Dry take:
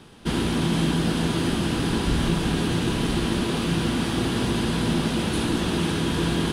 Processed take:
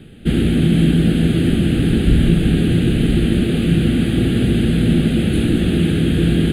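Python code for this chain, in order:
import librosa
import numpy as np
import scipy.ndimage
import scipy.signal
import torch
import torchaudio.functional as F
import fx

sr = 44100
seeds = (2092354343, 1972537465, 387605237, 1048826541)

y = fx.low_shelf(x, sr, hz=420.0, db=8.0)
y = fx.fixed_phaser(y, sr, hz=2400.0, stages=4)
y = y * 10.0 ** (3.5 / 20.0)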